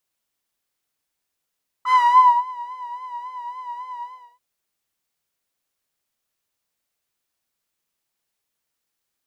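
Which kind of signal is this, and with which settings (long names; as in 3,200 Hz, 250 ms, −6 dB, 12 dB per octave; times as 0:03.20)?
subtractive patch with vibrato B5, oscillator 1 saw, detune 16 cents, sub −29 dB, noise −18.5 dB, filter bandpass, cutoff 650 Hz, Q 10, filter envelope 1 octave, filter decay 0.72 s, filter sustain 40%, attack 57 ms, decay 0.51 s, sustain −21.5 dB, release 0.37 s, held 2.17 s, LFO 3.6 Hz, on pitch 58 cents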